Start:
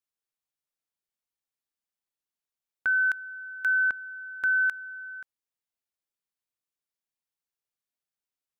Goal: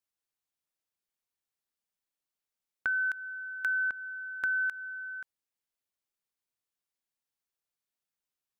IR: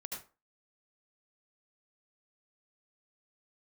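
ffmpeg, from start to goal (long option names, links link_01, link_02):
-af "acompressor=threshold=-28dB:ratio=6"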